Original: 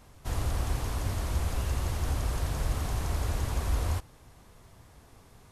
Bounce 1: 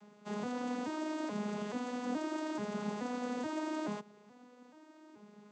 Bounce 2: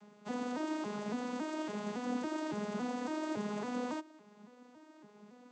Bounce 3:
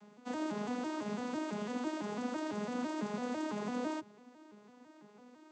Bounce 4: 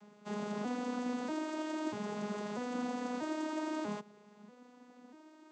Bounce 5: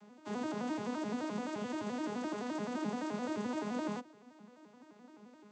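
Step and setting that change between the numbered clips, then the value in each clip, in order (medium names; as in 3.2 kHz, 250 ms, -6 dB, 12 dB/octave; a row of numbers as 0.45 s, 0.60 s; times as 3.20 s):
vocoder on a broken chord, a note every: 429 ms, 279 ms, 167 ms, 640 ms, 86 ms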